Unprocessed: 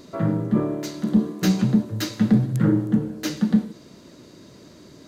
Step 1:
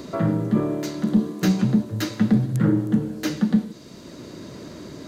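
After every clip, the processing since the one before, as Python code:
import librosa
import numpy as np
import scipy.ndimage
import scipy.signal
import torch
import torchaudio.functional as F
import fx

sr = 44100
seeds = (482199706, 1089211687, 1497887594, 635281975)

y = fx.band_squash(x, sr, depth_pct=40)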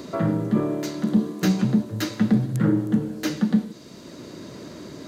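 y = fx.low_shelf(x, sr, hz=74.0, db=-8.0)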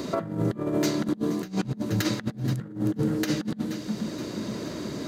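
y = fx.echo_feedback(x, sr, ms=475, feedback_pct=52, wet_db=-16.5)
y = fx.over_compress(y, sr, threshold_db=-27.0, ratio=-0.5)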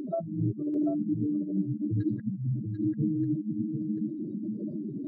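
y = fx.spec_expand(x, sr, power=3.7)
y = y + 10.0 ** (-6.0 / 20.0) * np.pad(y, (int(741 * sr / 1000.0), 0))[:len(y)]
y = y * 10.0 ** (-2.0 / 20.0)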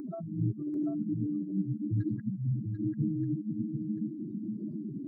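y = fx.fixed_phaser(x, sr, hz=1300.0, stages=4)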